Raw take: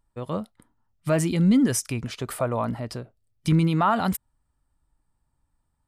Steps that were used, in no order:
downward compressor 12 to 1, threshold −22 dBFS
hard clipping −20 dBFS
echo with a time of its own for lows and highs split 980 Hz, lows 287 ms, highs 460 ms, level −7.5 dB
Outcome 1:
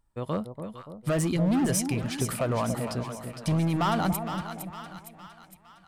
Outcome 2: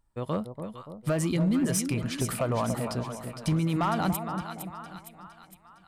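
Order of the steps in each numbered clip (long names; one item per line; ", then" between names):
hard clipping, then downward compressor, then echo with a time of its own for lows and highs
downward compressor, then echo with a time of its own for lows and highs, then hard clipping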